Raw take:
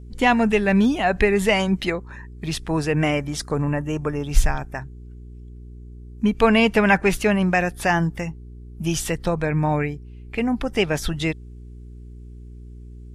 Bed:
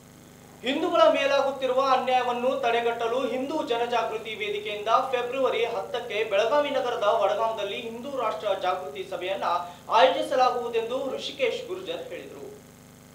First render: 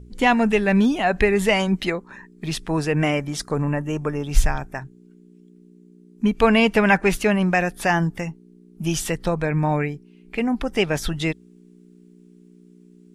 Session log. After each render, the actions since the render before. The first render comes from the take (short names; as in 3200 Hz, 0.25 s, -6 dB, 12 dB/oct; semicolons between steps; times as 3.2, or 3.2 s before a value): de-hum 60 Hz, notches 2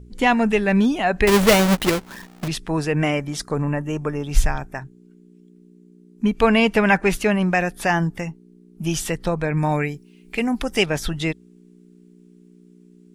1.27–2.48 half-waves squared off; 9.57–10.86 high shelf 3700 Hz +11.5 dB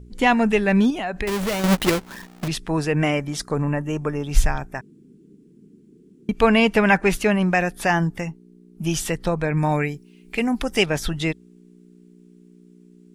0.9–1.64 compressor 3:1, threshold -25 dBFS; 4.81–6.29 room tone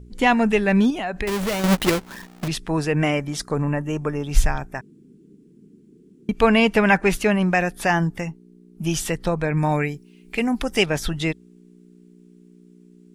nothing audible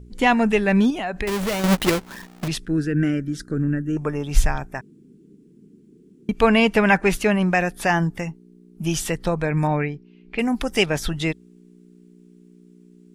2.65–3.97 EQ curve 210 Hz 0 dB, 310 Hz +4 dB, 1000 Hz -27 dB, 1500 Hz +4 dB, 2200 Hz -13 dB, 4000 Hz -9 dB; 9.67–10.39 air absorption 230 m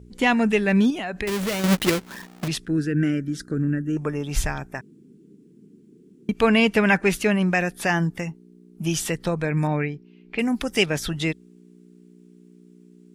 HPF 83 Hz 6 dB/oct; dynamic EQ 830 Hz, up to -5 dB, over -35 dBFS, Q 1.1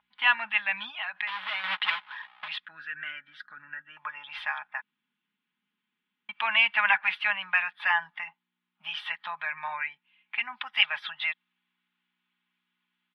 elliptic band-pass 890–3400 Hz, stop band 40 dB; comb 4.8 ms, depth 54%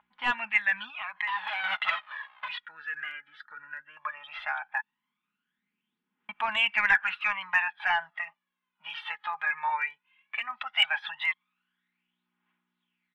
overdrive pedal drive 8 dB, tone 1100 Hz, clips at -6 dBFS; phaser 0.16 Hz, delay 2.5 ms, feedback 65%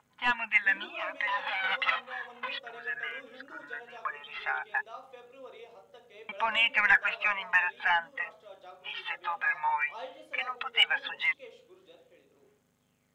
add bed -23.5 dB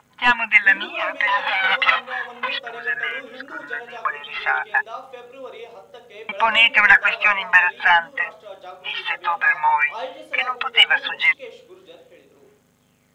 gain +11.5 dB; limiter -1 dBFS, peak gain reduction 2.5 dB